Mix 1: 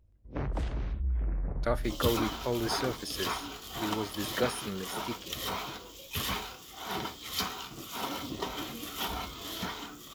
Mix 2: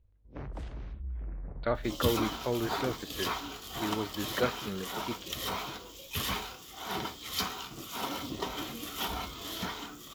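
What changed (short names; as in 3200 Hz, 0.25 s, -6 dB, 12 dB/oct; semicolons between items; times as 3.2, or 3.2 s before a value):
speech: add steep low-pass 4400 Hz 96 dB/oct; first sound -7.5 dB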